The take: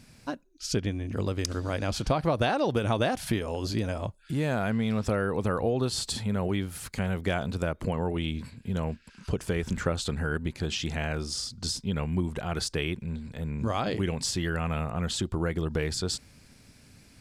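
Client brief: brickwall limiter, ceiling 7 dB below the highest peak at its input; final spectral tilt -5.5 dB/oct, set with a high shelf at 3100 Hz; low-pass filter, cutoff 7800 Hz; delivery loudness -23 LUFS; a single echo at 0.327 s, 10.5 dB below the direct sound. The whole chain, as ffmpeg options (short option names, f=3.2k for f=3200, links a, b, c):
-af "lowpass=7.8k,highshelf=f=3.1k:g=-4,alimiter=limit=-20dB:level=0:latency=1,aecho=1:1:327:0.299,volume=8.5dB"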